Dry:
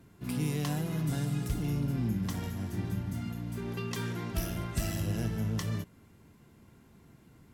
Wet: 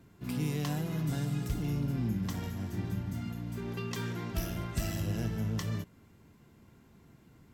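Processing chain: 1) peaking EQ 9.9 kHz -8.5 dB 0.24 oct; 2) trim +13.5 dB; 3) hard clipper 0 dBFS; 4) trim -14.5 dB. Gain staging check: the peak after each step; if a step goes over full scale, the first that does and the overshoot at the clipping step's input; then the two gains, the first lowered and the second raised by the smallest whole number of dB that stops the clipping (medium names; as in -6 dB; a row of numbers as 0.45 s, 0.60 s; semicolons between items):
-19.0 dBFS, -5.5 dBFS, -5.5 dBFS, -20.0 dBFS; nothing clips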